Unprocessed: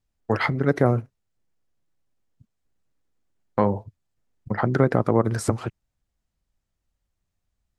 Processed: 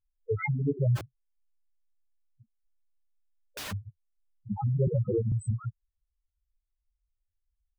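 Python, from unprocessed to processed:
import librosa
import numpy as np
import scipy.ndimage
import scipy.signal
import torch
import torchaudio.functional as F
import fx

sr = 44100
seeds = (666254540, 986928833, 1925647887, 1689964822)

y = fx.spec_topn(x, sr, count=2)
y = fx.overflow_wrap(y, sr, gain_db=33.5, at=(0.95, 3.71), fade=0.02)
y = fx.band_squash(y, sr, depth_pct=70, at=(4.87, 5.32))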